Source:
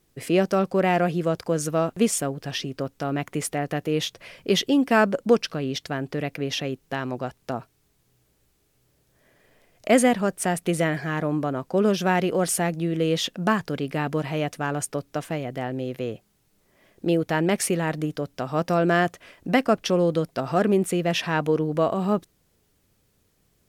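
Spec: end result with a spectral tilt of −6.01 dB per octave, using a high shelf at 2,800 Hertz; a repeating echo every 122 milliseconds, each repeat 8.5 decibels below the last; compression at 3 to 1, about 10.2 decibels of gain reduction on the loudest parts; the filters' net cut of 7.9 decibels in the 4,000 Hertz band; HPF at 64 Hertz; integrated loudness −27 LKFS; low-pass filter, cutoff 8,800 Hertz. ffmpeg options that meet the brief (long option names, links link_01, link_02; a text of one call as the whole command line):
ffmpeg -i in.wav -af "highpass=64,lowpass=8800,highshelf=frequency=2800:gain=-6.5,equalizer=frequency=4000:width_type=o:gain=-5.5,acompressor=threshold=-27dB:ratio=3,aecho=1:1:122|244|366|488:0.376|0.143|0.0543|0.0206,volume=4dB" out.wav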